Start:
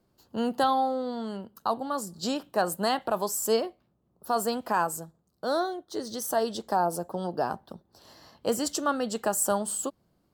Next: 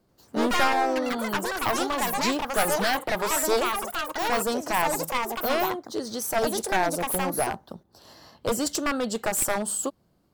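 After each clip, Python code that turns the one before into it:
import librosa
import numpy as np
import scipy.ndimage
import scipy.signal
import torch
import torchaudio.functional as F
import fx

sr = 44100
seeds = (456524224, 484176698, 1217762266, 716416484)

y = np.minimum(x, 2.0 * 10.0 ** (-23.0 / 20.0) - x)
y = fx.echo_pitch(y, sr, ms=87, semitones=5, count=3, db_per_echo=-3.0)
y = y * librosa.db_to_amplitude(3.0)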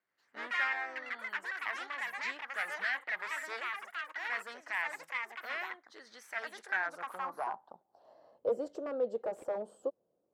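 y = fx.filter_sweep_bandpass(x, sr, from_hz=1900.0, to_hz=510.0, start_s=6.52, end_s=8.47, q=4.0)
y = y * librosa.db_to_amplitude(-1.0)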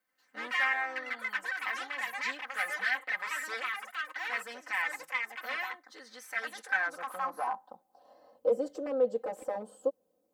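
y = fx.high_shelf(x, sr, hz=8000.0, db=8.5)
y = y + 0.96 * np.pad(y, (int(3.9 * sr / 1000.0), 0))[:len(y)]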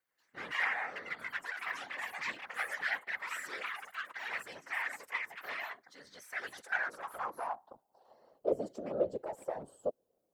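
y = fx.whisperise(x, sr, seeds[0])
y = y * librosa.db_to_amplitude(-4.5)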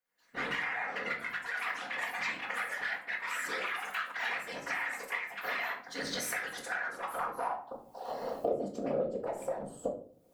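y = fx.recorder_agc(x, sr, target_db=-22.0, rise_db_per_s=41.0, max_gain_db=30)
y = fx.room_shoebox(y, sr, seeds[1], volume_m3=390.0, walls='furnished', distance_m=1.8)
y = y * librosa.db_to_amplitude(-6.0)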